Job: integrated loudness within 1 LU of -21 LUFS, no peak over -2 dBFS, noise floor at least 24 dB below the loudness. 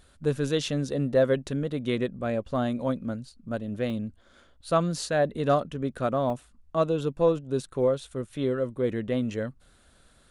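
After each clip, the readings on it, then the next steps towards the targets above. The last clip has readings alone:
dropouts 2; longest dropout 1.3 ms; loudness -28.0 LUFS; peak -11.5 dBFS; loudness target -21.0 LUFS
-> interpolate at 3.9/6.3, 1.3 ms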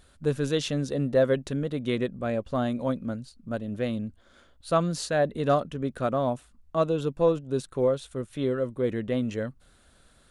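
dropouts 0; loudness -28.0 LUFS; peak -11.5 dBFS; loudness target -21.0 LUFS
-> gain +7 dB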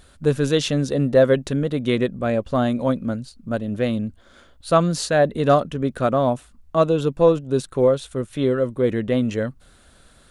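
loudness -21.0 LUFS; peak -4.5 dBFS; noise floor -53 dBFS

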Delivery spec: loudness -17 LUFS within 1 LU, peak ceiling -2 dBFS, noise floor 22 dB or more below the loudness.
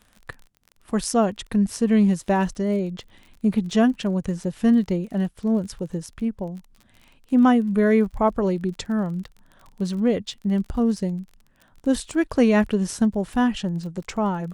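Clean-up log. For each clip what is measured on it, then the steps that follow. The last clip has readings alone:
ticks 33/s; loudness -23.0 LUFS; peak -6.5 dBFS; loudness target -17.0 LUFS
-> de-click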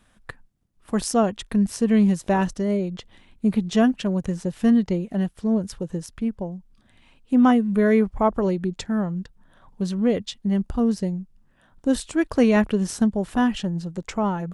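ticks 0.069/s; loudness -23.0 LUFS; peak -6.5 dBFS; loudness target -17.0 LUFS
-> gain +6 dB; limiter -2 dBFS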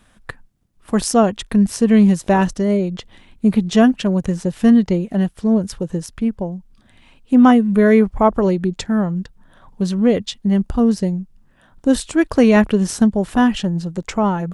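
loudness -17.0 LUFS; peak -2.0 dBFS; noise floor -54 dBFS

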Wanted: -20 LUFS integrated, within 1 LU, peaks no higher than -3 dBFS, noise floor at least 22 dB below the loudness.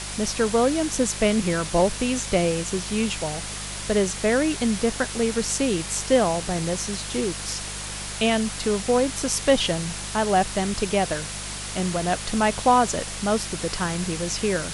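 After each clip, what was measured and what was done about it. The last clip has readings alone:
hum 50 Hz; harmonics up to 200 Hz; hum level -36 dBFS; noise floor -33 dBFS; noise floor target -46 dBFS; loudness -23.5 LUFS; peak -6.0 dBFS; loudness target -20.0 LUFS
-> de-hum 50 Hz, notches 4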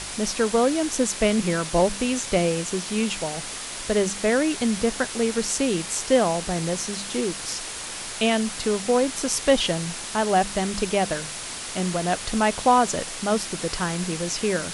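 hum none; noise floor -34 dBFS; noise floor target -46 dBFS
-> noise print and reduce 12 dB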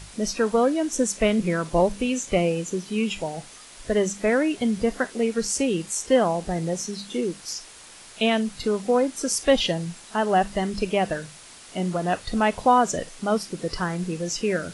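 noise floor -46 dBFS; noise floor target -47 dBFS
-> noise print and reduce 6 dB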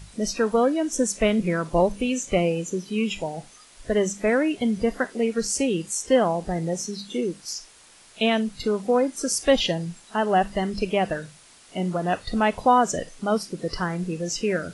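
noise floor -52 dBFS; loudness -24.5 LUFS; peak -6.5 dBFS; loudness target -20.0 LUFS
-> gain +4.5 dB; limiter -3 dBFS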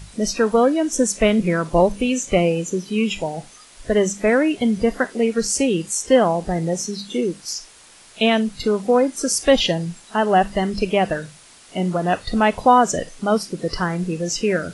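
loudness -20.0 LUFS; peak -3.0 dBFS; noise floor -47 dBFS

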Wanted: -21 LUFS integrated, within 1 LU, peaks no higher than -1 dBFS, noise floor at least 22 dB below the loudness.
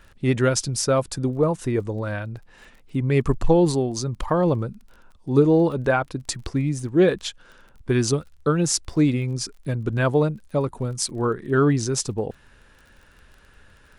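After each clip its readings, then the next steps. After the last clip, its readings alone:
ticks 24/s; loudness -22.5 LUFS; peak -5.0 dBFS; loudness target -21.0 LUFS
-> de-click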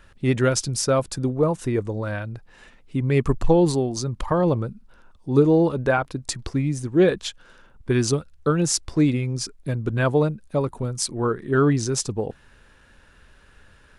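ticks 0/s; loudness -22.5 LUFS; peak -5.0 dBFS; loudness target -21.0 LUFS
-> gain +1.5 dB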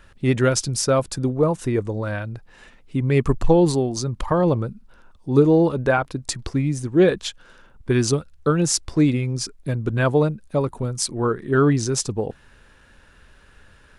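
loudness -21.0 LUFS; peak -3.5 dBFS; noise floor -53 dBFS

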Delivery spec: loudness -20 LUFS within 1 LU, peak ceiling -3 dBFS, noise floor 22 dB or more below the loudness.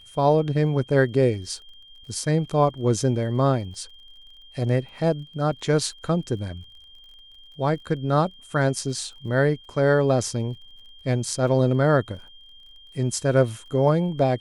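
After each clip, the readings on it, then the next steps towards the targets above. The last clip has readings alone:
ticks 36/s; steady tone 3200 Hz; tone level -47 dBFS; loudness -23.5 LUFS; peak -7.0 dBFS; loudness target -20.0 LUFS
-> de-click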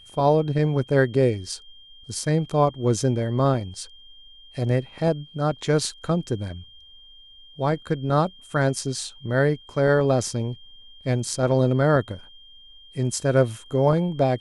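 ticks 0/s; steady tone 3200 Hz; tone level -47 dBFS
-> notch 3200 Hz, Q 30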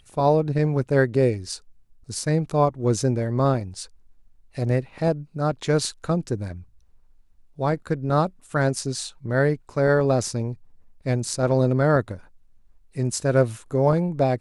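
steady tone none; loudness -23.5 LUFS; peak -7.0 dBFS; loudness target -20.0 LUFS
-> gain +3.5 dB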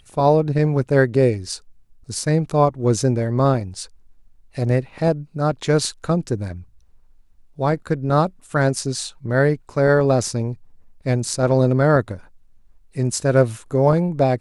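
loudness -20.0 LUFS; peak -3.5 dBFS; noise floor -52 dBFS

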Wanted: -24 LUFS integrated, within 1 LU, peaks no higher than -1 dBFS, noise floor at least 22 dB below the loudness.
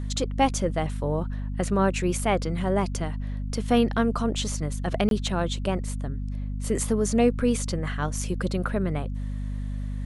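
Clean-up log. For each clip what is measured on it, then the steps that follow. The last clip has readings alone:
dropouts 1; longest dropout 22 ms; hum 50 Hz; harmonics up to 250 Hz; hum level -28 dBFS; loudness -26.5 LUFS; peak -7.5 dBFS; loudness target -24.0 LUFS
-> interpolate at 5.09, 22 ms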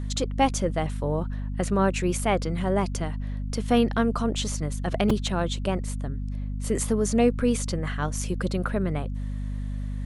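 dropouts 0; hum 50 Hz; harmonics up to 250 Hz; hum level -28 dBFS
-> de-hum 50 Hz, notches 5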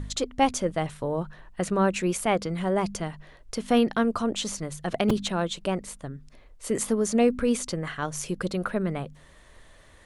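hum none; loudness -27.0 LUFS; peak -8.0 dBFS; loudness target -24.0 LUFS
-> gain +3 dB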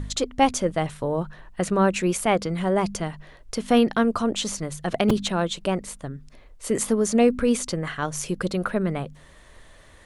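loudness -24.0 LUFS; peak -5.0 dBFS; noise floor -50 dBFS

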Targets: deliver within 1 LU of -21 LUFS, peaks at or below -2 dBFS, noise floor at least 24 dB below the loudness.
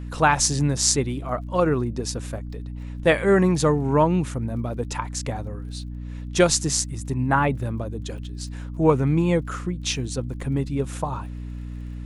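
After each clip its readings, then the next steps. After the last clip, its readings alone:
ticks 28/s; hum 60 Hz; harmonics up to 300 Hz; hum level -30 dBFS; loudness -23.0 LUFS; peak -1.5 dBFS; loudness target -21.0 LUFS
-> de-click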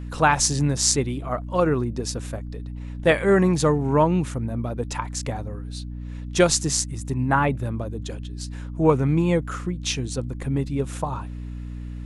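ticks 0/s; hum 60 Hz; harmonics up to 300 Hz; hum level -30 dBFS
-> notches 60/120/180/240/300 Hz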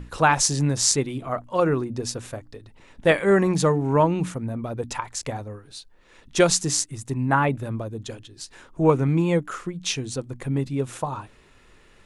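hum none; loudness -23.5 LUFS; peak -2.0 dBFS; loudness target -21.0 LUFS
-> gain +2.5 dB; limiter -2 dBFS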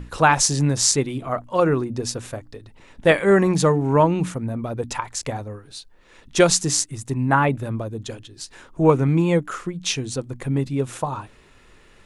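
loudness -21.0 LUFS; peak -2.0 dBFS; noise floor -52 dBFS

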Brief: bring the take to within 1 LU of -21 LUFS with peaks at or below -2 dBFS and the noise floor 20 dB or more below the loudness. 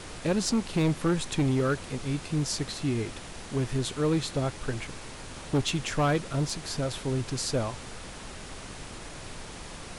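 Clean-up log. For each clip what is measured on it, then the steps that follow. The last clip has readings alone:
clipped 1.6%; flat tops at -20.0 dBFS; noise floor -43 dBFS; noise floor target -50 dBFS; loudness -29.5 LUFS; peak -20.0 dBFS; loudness target -21.0 LUFS
-> clip repair -20 dBFS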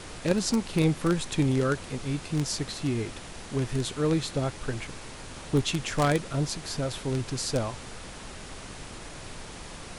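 clipped 0.0%; noise floor -43 dBFS; noise floor target -49 dBFS
-> noise print and reduce 6 dB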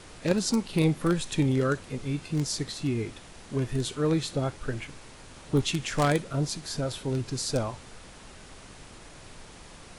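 noise floor -48 dBFS; noise floor target -49 dBFS
-> noise print and reduce 6 dB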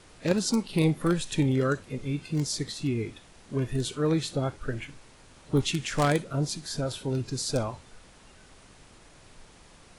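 noise floor -54 dBFS; loudness -29.0 LUFS; peak -11.0 dBFS; loudness target -21.0 LUFS
-> gain +8 dB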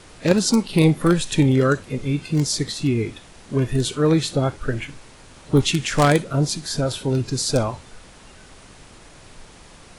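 loudness -21.0 LUFS; peak -3.0 dBFS; noise floor -46 dBFS

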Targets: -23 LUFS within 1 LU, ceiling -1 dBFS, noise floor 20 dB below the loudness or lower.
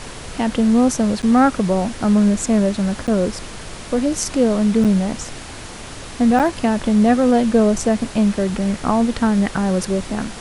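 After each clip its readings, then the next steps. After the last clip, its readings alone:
dropouts 4; longest dropout 7.8 ms; noise floor -34 dBFS; noise floor target -38 dBFS; loudness -17.5 LUFS; peak -3.5 dBFS; loudness target -23.0 LUFS
-> interpolate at 1.22/3.07/4.84/6.39, 7.8 ms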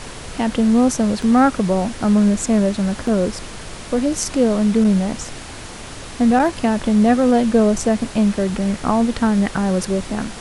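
dropouts 0; noise floor -34 dBFS; noise floor target -38 dBFS
-> noise print and reduce 6 dB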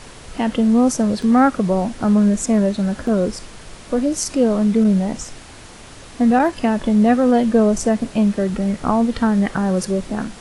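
noise floor -40 dBFS; loudness -17.5 LUFS; peak -3.5 dBFS; loudness target -23.0 LUFS
-> gain -5.5 dB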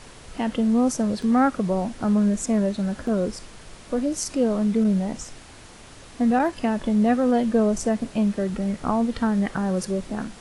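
loudness -23.0 LUFS; peak -9.0 dBFS; noise floor -45 dBFS

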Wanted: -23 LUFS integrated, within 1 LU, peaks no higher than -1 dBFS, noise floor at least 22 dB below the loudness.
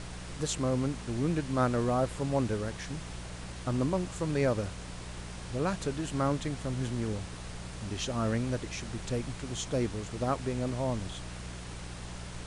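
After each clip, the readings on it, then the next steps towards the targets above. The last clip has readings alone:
hum 60 Hz; harmonics up to 180 Hz; hum level -41 dBFS; noise floor -43 dBFS; noise floor target -56 dBFS; loudness -33.5 LUFS; peak -15.5 dBFS; loudness target -23.0 LUFS
-> de-hum 60 Hz, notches 3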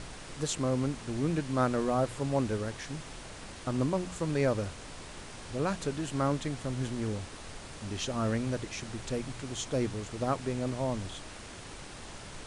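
hum none; noise floor -46 dBFS; noise floor target -55 dBFS
-> noise print and reduce 9 dB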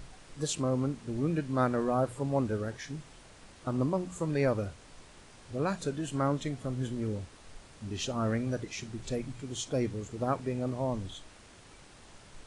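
noise floor -55 dBFS; loudness -33.0 LUFS; peak -16.0 dBFS; loudness target -23.0 LUFS
-> gain +10 dB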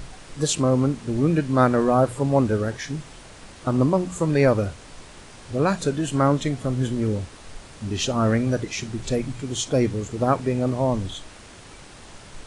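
loudness -23.0 LUFS; peak -6.0 dBFS; noise floor -45 dBFS

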